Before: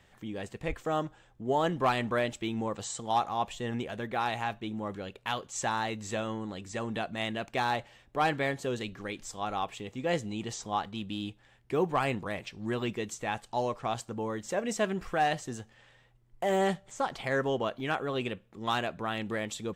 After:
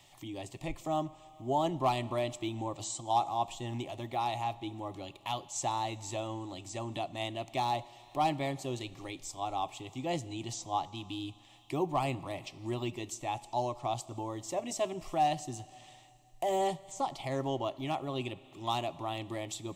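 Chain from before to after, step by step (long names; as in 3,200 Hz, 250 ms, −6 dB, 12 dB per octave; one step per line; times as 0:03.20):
phaser with its sweep stopped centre 310 Hz, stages 8
four-comb reverb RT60 2.1 s, combs from 27 ms, DRR 18.5 dB
one half of a high-frequency compander encoder only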